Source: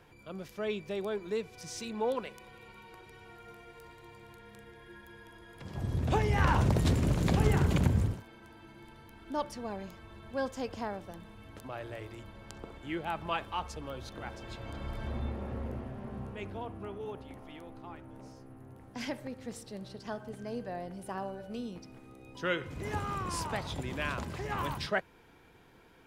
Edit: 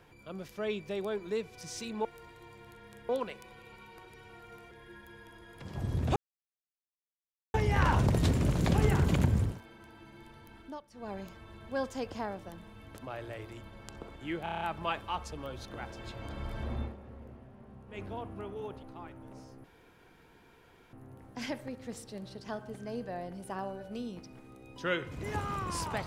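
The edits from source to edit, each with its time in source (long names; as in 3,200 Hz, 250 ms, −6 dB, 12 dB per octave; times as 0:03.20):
0:03.67–0:04.71: move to 0:02.05
0:06.16: splice in silence 1.38 s
0:09.19–0:09.76: duck −18.5 dB, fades 0.24 s
0:13.05: stutter 0.03 s, 7 plays
0:15.25–0:16.46: duck −11 dB, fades 0.16 s
0:17.27–0:17.71: remove
0:18.52: splice in room tone 1.29 s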